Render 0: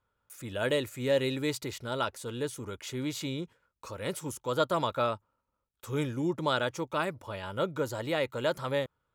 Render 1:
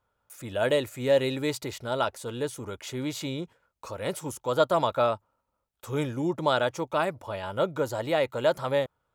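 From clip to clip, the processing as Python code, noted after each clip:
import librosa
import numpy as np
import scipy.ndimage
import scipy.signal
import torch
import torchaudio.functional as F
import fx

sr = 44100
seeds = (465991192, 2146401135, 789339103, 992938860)

y = fx.peak_eq(x, sr, hz=710.0, db=7.0, octaves=0.72)
y = F.gain(torch.from_numpy(y), 1.5).numpy()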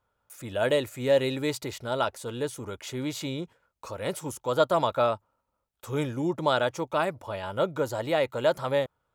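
y = x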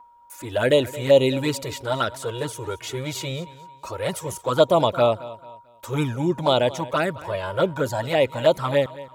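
y = x + 10.0 ** (-49.0 / 20.0) * np.sin(2.0 * np.pi * 950.0 * np.arange(len(x)) / sr)
y = fx.env_flanger(y, sr, rest_ms=4.1, full_db=-19.5)
y = fx.echo_feedback(y, sr, ms=221, feedback_pct=33, wet_db=-18)
y = F.gain(torch.from_numpy(y), 8.5).numpy()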